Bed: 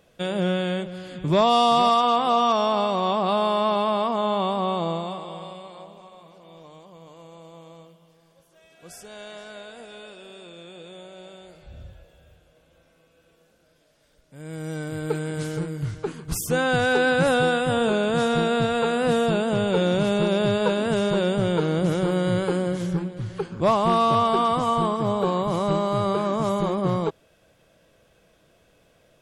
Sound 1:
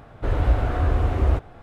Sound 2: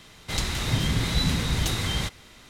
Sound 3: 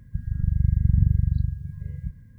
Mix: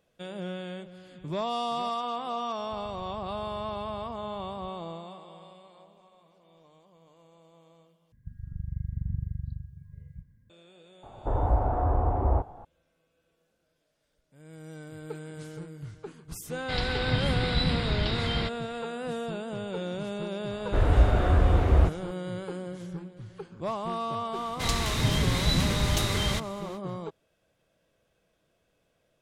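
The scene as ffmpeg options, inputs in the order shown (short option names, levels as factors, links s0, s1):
-filter_complex "[3:a]asplit=2[s0][s1];[1:a]asplit=2[s2][s3];[2:a]asplit=2[s4][s5];[0:a]volume=0.237[s6];[s0]acompressor=threshold=0.0631:ratio=6:attack=3.2:release=140:knee=1:detection=peak[s7];[s2]lowpass=f=870:t=q:w=3.5[s8];[s4]aresample=11025,aresample=44100[s9];[s5]acontrast=76[s10];[s6]asplit=2[s11][s12];[s11]atrim=end=8.124[s13];[s1]atrim=end=2.38,asetpts=PTS-STARTPTS,volume=0.224[s14];[s12]atrim=start=10.496[s15];[s7]atrim=end=2.38,asetpts=PTS-STARTPTS,volume=0.141,afade=t=in:d=0.004:c=hsin,afade=t=out:st=2.376:d=0.004:c=hsin,adelay=2580[s16];[s8]atrim=end=1.62,asetpts=PTS-STARTPTS,volume=0.531,afade=t=in:d=0.004:c=hsin,afade=t=out:st=1.616:d=0.004:c=hsin,adelay=11030[s17];[s9]atrim=end=2.49,asetpts=PTS-STARTPTS,volume=0.75,afade=t=in:d=0.1,afade=t=out:st=2.39:d=0.1,adelay=16400[s18];[s3]atrim=end=1.62,asetpts=PTS-STARTPTS,volume=0.944,afade=t=in:d=0.004:c=hsin,afade=t=out:st=1.616:d=0.004:c=hsin,adelay=20500[s19];[s10]atrim=end=2.49,asetpts=PTS-STARTPTS,volume=0.422,afade=t=in:d=0.05,afade=t=out:st=2.44:d=0.05,adelay=24310[s20];[s13][s14]acrossfade=d=0.004:c1=hsin:c2=hsin[s21];[s21][s15]acrossfade=d=0.004:c1=hsin:c2=hsin[s22];[s22][s16][s17][s18][s19][s20]amix=inputs=6:normalize=0"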